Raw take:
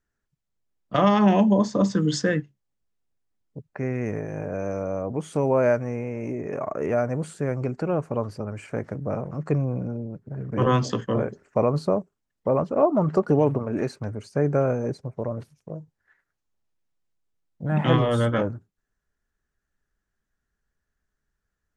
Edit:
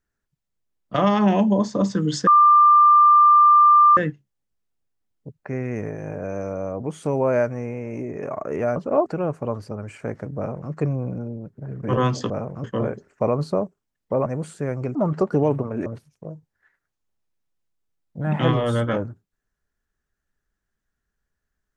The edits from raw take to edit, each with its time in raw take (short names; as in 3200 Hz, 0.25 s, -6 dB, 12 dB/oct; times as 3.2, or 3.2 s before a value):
2.27 add tone 1190 Hz -9.5 dBFS 1.70 s
7.06–7.75 swap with 12.61–12.91
9.06–9.4 copy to 10.99
13.82–15.31 cut